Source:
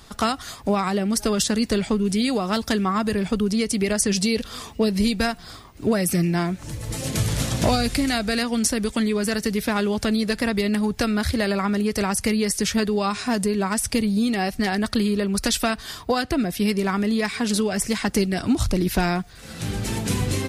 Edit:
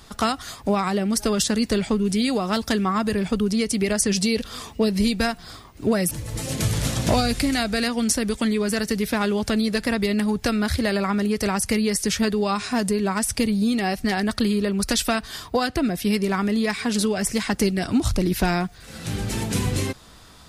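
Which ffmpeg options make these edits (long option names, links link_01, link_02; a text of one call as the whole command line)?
ffmpeg -i in.wav -filter_complex "[0:a]asplit=2[link_01][link_02];[link_01]atrim=end=6.112[link_03];[link_02]atrim=start=6.658[link_04];[link_03][link_04]acrossfade=duration=0.004:curve1=hsin:curve2=hsin" out.wav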